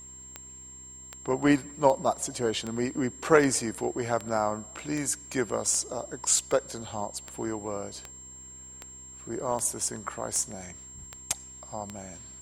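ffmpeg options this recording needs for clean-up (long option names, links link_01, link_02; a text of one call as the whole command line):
ffmpeg -i in.wav -af "adeclick=threshold=4,bandreject=frequency=64.6:width_type=h:width=4,bandreject=frequency=129.2:width_type=h:width=4,bandreject=frequency=193.8:width_type=h:width=4,bandreject=frequency=258.4:width_type=h:width=4,bandreject=frequency=323:width_type=h:width=4,bandreject=frequency=387.6:width_type=h:width=4,bandreject=frequency=7500:width=30" out.wav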